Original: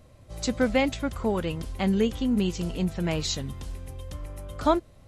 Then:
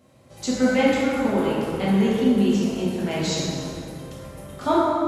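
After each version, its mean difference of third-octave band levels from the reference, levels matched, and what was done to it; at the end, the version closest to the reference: 7.0 dB: high-pass 140 Hz 12 dB/octave; plate-style reverb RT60 2.9 s, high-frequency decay 0.5×, DRR -7.5 dB; trim -3 dB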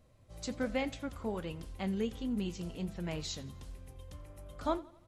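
1.0 dB: feedback delay 85 ms, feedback 50%, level -21 dB; flange 1.3 Hz, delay 3.8 ms, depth 8.4 ms, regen -75%; trim -6.5 dB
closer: second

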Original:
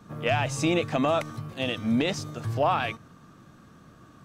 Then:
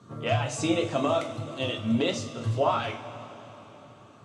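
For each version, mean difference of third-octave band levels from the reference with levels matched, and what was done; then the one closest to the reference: 4.5 dB: reverb removal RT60 0.65 s; cabinet simulation 100–9000 Hz, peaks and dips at 180 Hz -9 dB, 780 Hz -6 dB, 1.7 kHz -8 dB, 2.4 kHz -6 dB, 5.3 kHz -5 dB; two-slope reverb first 0.33 s, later 4.1 s, from -18 dB, DRR 0.5 dB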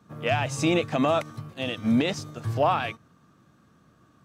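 3.5 dB: in parallel at -0.5 dB: peak limiter -20 dBFS, peak gain reduction 8 dB; on the sum: high-pass 48 Hz; upward expansion 1.5:1, over -40 dBFS; trim -1.5 dB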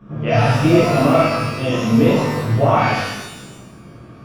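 7.0 dB: Savitzky-Golay filter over 25 samples; bass shelf 400 Hz +7.5 dB; pitch-shifted reverb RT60 1 s, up +12 st, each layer -8 dB, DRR -8.5 dB; trim -2.5 dB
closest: second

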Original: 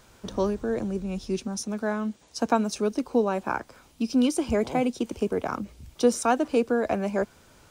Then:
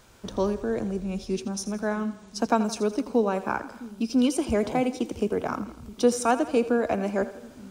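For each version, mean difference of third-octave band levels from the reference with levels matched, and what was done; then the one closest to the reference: 2.0 dB: on a send: two-band feedback delay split 310 Hz, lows 659 ms, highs 83 ms, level -14 dB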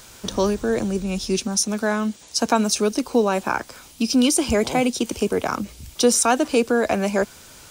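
4.5 dB: treble shelf 2.4 kHz +11.5 dB; in parallel at -1 dB: peak limiter -18 dBFS, peak gain reduction 10 dB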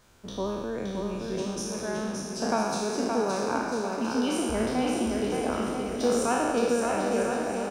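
10.0 dB: spectral sustain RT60 1.67 s; on a send: bouncing-ball echo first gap 570 ms, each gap 0.75×, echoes 5; on the sum: trim -7 dB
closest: first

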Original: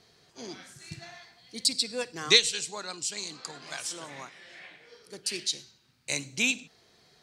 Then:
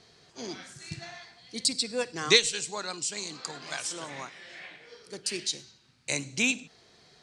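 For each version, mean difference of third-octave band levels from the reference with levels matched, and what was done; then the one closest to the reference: 2.5 dB: low-pass 9.5 kHz 24 dB/octave; dynamic bell 4 kHz, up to -5 dB, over -38 dBFS, Q 0.79; trim +3 dB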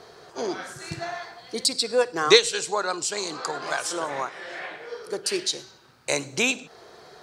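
4.0 dB: high-order bell 740 Hz +11 dB 2.5 oct; in parallel at +3 dB: compression, threshold -36 dBFS, peak gain reduction 23.5 dB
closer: first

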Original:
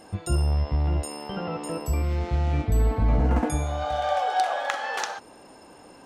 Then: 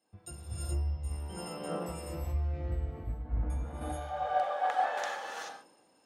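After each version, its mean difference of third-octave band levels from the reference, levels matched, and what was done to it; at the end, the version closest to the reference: 7.5 dB: dynamic bell 5.5 kHz, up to -5 dB, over -49 dBFS, Q 0.94; compression 10:1, threshold -28 dBFS, peak gain reduction 11.5 dB; gated-style reverb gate 460 ms rising, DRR -4 dB; three bands expanded up and down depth 100%; trim -9 dB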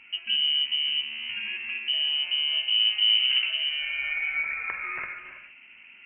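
20.0 dB: treble shelf 2.1 kHz -11.5 dB; in parallel at +1 dB: compression, threshold -29 dBFS, peak gain reduction 11.5 dB; on the sum: gated-style reverb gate 350 ms rising, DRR 8.5 dB; frequency inversion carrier 3 kHz; trim -7.5 dB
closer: first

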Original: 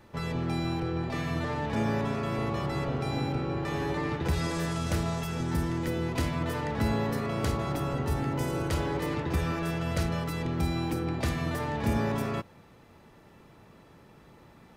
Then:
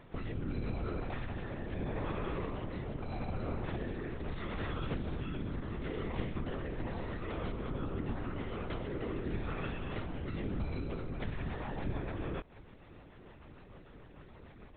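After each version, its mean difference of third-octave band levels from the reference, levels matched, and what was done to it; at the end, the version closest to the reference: 8.0 dB: compression 6:1, threshold -36 dBFS, peak gain reduction 13 dB; rotary cabinet horn 0.8 Hz, later 6.7 Hz, at 10.41 s; LPC vocoder at 8 kHz whisper; trim +3 dB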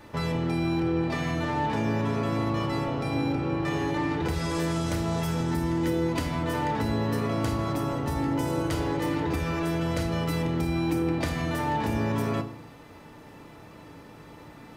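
2.5 dB: bass shelf 120 Hz -4.5 dB; compression, threshold -34 dBFS, peak gain reduction 10 dB; FDN reverb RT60 0.57 s, low-frequency decay 1.35×, high-frequency decay 0.9×, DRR 4.5 dB; trim +6.5 dB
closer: second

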